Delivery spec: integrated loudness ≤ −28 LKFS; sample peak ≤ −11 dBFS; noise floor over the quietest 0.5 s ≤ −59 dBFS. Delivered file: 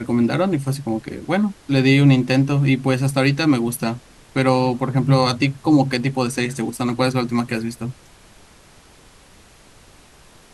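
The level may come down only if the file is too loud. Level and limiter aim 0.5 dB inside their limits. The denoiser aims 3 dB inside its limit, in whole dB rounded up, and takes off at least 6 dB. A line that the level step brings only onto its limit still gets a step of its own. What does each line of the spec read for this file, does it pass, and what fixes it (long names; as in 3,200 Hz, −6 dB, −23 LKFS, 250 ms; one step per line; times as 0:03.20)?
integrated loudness −19.0 LKFS: out of spec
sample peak −4.0 dBFS: out of spec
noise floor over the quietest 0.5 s −48 dBFS: out of spec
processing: broadband denoise 6 dB, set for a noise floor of −48 dBFS
level −9.5 dB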